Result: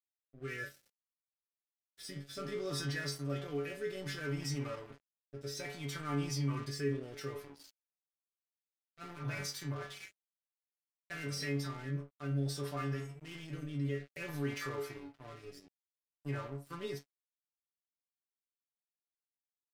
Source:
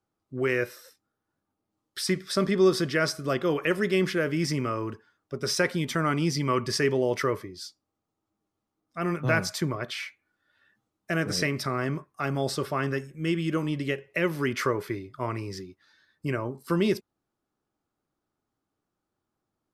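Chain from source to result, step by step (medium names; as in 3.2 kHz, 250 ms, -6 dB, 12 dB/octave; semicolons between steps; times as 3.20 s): transient shaper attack -3 dB, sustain +6 dB; inharmonic resonator 140 Hz, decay 0.44 s, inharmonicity 0.002; crossover distortion -52 dBFS; rotary cabinet horn 0.6 Hz; in parallel at +3 dB: peak limiter -37.5 dBFS, peak gain reduction 13 dB; on the sum: trim -2 dB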